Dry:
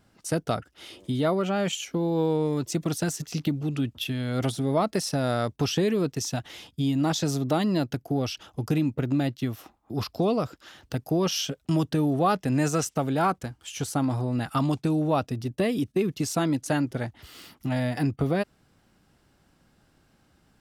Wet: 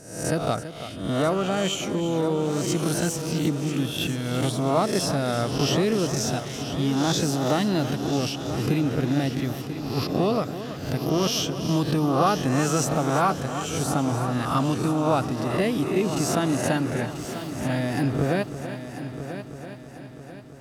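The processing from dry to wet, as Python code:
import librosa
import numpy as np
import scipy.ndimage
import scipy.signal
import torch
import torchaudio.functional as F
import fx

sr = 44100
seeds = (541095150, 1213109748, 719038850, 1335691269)

y = fx.spec_swells(x, sr, rise_s=0.7)
y = fx.echo_heads(y, sr, ms=330, heads='first and third', feedback_pct=59, wet_db=-12)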